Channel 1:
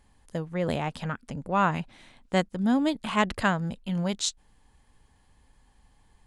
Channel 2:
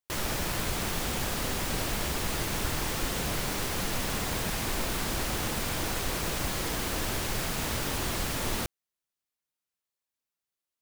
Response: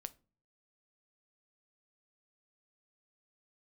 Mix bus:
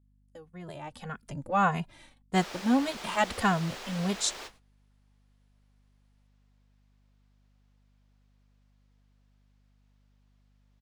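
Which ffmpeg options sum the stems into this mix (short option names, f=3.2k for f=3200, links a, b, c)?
-filter_complex "[0:a]adynamicequalizer=threshold=0.02:dfrequency=780:dqfactor=0.74:tfrequency=780:tqfactor=0.74:attack=5:release=100:ratio=0.375:range=2:mode=boostabove:tftype=bell,asplit=2[a][b];[b]adelay=2.4,afreqshift=-1.7[c];[a][c]amix=inputs=2:normalize=1,volume=-1dB,afade=t=in:st=0.78:d=0.57:silence=0.237137,asplit=3[d][e][f];[e]volume=-22dB[g];[1:a]acrossover=split=350 6000:gain=0.0708 1 0.0708[h][i][j];[h][i][j]amix=inputs=3:normalize=0,adelay=2250,volume=-8dB,asplit=2[k][l];[l]volume=-19dB[m];[f]apad=whole_len=576032[n];[k][n]sidechaingate=range=-33dB:threshold=-53dB:ratio=16:detection=peak[o];[2:a]atrim=start_sample=2205[p];[g][m]amix=inputs=2:normalize=0[q];[q][p]afir=irnorm=-1:irlink=0[r];[d][o][r]amix=inputs=3:normalize=0,agate=range=-18dB:threshold=-54dB:ratio=16:detection=peak,highshelf=f=8k:g=10,aeval=exprs='val(0)+0.000631*(sin(2*PI*50*n/s)+sin(2*PI*2*50*n/s)/2+sin(2*PI*3*50*n/s)/3+sin(2*PI*4*50*n/s)/4+sin(2*PI*5*50*n/s)/5)':c=same"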